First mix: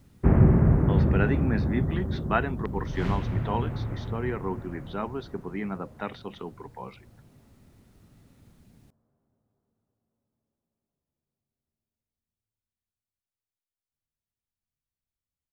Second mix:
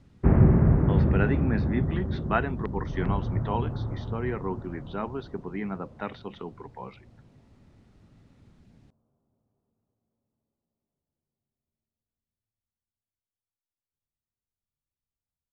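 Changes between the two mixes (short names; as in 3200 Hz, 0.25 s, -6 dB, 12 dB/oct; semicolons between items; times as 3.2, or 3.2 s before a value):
second sound: add LPF 1300 Hz 24 dB/oct; master: add air absorption 89 m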